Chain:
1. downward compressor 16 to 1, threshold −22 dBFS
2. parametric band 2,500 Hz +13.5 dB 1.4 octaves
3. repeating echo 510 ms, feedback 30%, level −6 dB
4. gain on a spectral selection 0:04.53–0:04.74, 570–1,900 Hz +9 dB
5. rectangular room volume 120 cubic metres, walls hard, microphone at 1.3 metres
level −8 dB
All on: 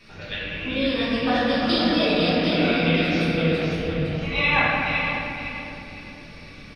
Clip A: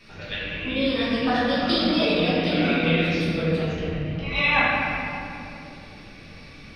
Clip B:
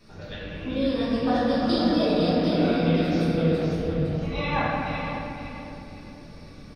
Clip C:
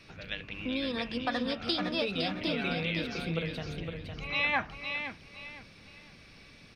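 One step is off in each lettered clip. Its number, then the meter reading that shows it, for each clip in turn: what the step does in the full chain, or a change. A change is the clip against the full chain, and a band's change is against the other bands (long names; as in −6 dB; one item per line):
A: 3, change in momentary loudness spread −1 LU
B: 2, 2 kHz band −10.0 dB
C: 5, change in crest factor +2.5 dB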